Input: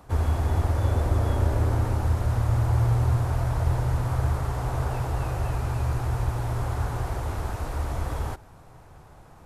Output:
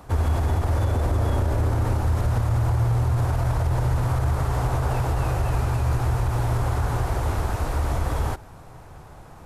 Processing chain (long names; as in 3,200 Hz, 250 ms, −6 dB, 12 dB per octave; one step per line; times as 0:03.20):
brickwall limiter −20 dBFS, peak gain reduction 8.5 dB
level +5.5 dB